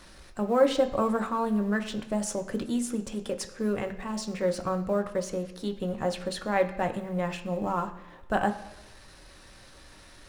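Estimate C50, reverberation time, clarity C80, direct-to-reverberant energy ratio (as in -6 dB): 12.5 dB, 1.1 s, 14.5 dB, 5.0 dB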